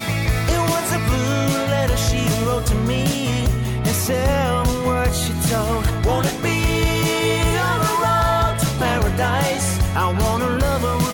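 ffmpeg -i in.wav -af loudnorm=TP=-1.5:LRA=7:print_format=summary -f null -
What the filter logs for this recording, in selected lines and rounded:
Input Integrated:    -19.3 LUFS
Input True Peak:      -8.6 dBTP
Input LRA:             1.0 LU
Input Threshold:     -29.3 LUFS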